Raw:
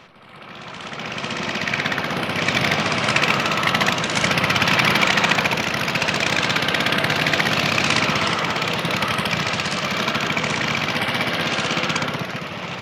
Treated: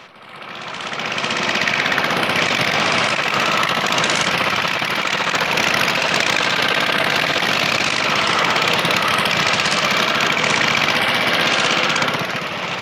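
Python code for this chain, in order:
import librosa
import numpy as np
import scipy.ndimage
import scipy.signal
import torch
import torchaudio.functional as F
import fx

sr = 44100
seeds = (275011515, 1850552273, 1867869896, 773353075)

y = fx.low_shelf(x, sr, hz=270.0, db=-9.5)
y = fx.over_compress(y, sr, threshold_db=-23.0, ratio=-1.0)
y = F.gain(torch.from_numpy(y), 5.5).numpy()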